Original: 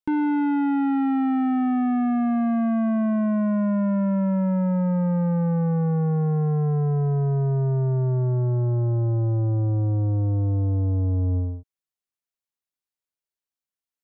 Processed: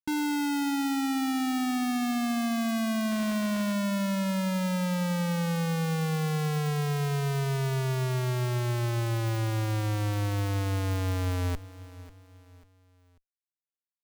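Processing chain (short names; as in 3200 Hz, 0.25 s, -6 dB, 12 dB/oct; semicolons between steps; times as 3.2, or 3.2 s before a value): 3.11–3.73 modulation noise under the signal 13 dB; Schmitt trigger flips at -31 dBFS; feedback echo 0.542 s, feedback 39%, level -17.5 dB; gain -5.5 dB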